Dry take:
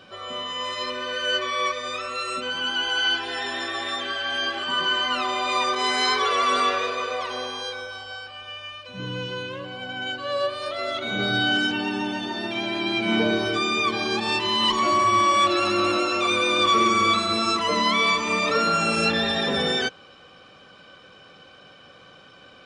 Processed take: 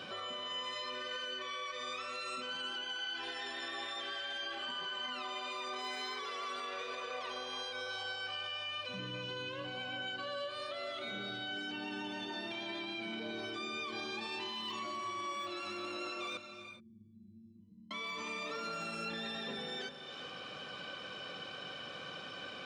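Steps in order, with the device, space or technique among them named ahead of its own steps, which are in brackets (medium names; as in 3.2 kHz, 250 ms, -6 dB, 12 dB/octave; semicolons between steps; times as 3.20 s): broadcast voice chain (high-pass 110 Hz; de-esser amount 65%; compression 4:1, threshold -40 dBFS, peak gain reduction 19 dB; peaking EQ 3.1 kHz +3 dB 1.6 oct; peak limiter -35 dBFS, peak gain reduction 8 dB); 16.37–17.91 s: inverse Chebyshev low-pass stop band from 510 Hz, stop band 50 dB; gated-style reverb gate 440 ms rising, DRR 8.5 dB; trim +1.5 dB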